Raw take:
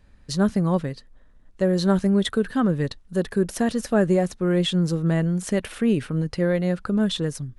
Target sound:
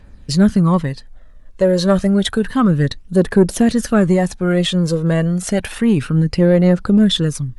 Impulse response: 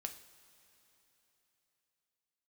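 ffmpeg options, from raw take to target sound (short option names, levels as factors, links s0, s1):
-af "aphaser=in_gain=1:out_gain=1:delay=2:decay=0.46:speed=0.3:type=triangular,acontrast=83"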